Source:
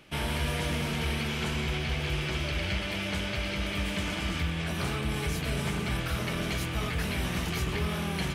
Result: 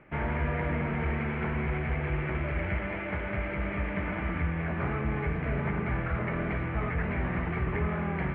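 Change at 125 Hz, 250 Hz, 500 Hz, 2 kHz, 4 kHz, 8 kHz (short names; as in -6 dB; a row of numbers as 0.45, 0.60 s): +1.0 dB, +0.5 dB, +1.5 dB, -0.5 dB, -19.5 dB, under -40 dB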